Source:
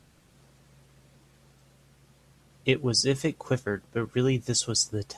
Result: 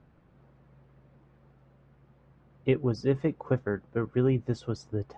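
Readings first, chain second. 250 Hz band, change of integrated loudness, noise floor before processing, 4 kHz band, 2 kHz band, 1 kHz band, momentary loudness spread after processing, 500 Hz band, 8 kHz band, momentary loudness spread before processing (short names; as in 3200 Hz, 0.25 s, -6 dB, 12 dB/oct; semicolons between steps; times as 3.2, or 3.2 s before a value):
0.0 dB, -2.5 dB, -60 dBFS, -20.0 dB, -7.0 dB, -1.5 dB, 7 LU, 0.0 dB, under -25 dB, 7 LU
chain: LPF 1400 Hz 12 dB/oct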